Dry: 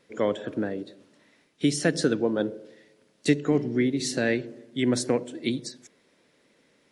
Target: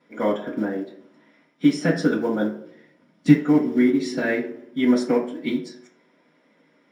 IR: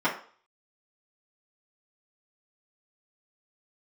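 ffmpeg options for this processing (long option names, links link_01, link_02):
-filter_complex "[0:a]asettb=1/sr,asplit=3[link_01][link_02][link_03];[link_01]atrim=end=2.244[link_04];[link_02]atrim=start=2.24:end=3.39,asetpts=PTS-STARTPTS,afade=type=in:duration=0.004:curve=qsin,afade=type=out:start_time=1.146:duration=0.004:curve=qsin,asubboost=boost=9:cutoff=220[link_05];[link_03]atrim=start=3.386[link_06];[link_04][link_05]acrossfade=duration=0.004:curve1=hsin:curve2=qsin[link_07];[link_07][link_06]acrossfade=duration=0.004:curve1=qsin:curve2=hsin,acrusher=bits=6:mode=log:mix=0:aa=0.000001[link_08];[1:a]atrim=start_sample=2205[link_09];[link_08][link_09]afir=irnorm=-1:irlink=0,volume=-10dB"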